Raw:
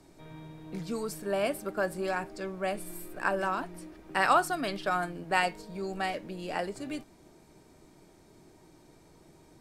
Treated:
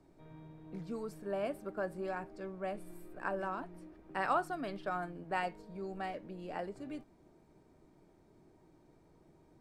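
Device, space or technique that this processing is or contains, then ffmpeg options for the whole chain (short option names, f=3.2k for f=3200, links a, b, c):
through cloth: -af "highshelf=f=2.4k:g=-13,volume=-6dB"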